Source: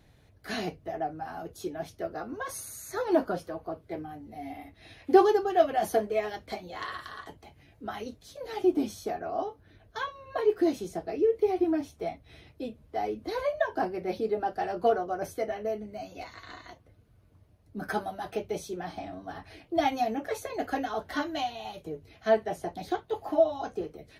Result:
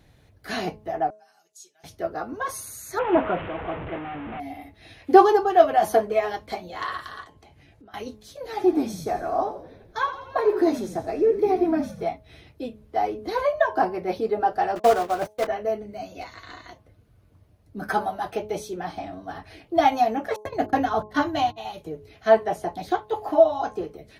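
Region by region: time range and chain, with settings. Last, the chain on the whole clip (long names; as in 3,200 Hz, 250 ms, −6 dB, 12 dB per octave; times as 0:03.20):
0:01.10–0:01.84: resonant band-pass 7,200 Hz, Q 2.9 + comb filter 5.1 ms, depth 83%
0:02.99–0:04.40: linear delta modulator 16 kbit/s, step −31.5 dBFS + high-frequency loss of the air 150 metres
0:07.24–0:07.94: low-pass filter 11,000 Hz + downward compressor 12 to 1, threshold −50 dBFS
0:08.51–0:12.03: notch filter 3,000 Hz, Q 7.8 + echo with shifted repeats 84 ms, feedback 63%, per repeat −51 Hz, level −12.5 dB
0:14.75–0:15.47: one scale factor per block 3 bits + noise gate −38 dBFS, range −25 dB + high-shelf EQ 4,000 Hz −8 dB
0:20.36–0:21.58: noise gate −38 dBFS, range −40 dB + parametric band 110 Hz +13.5 dB 1.9 octaves + hum removal 52.26 Hz, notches 7
whole clip: hum removal 212.7 Hz, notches 5; dynamic equaliser 1,000 Hz, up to +7 dB, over −41 dBFS, Q 1.1; level +3.5 dB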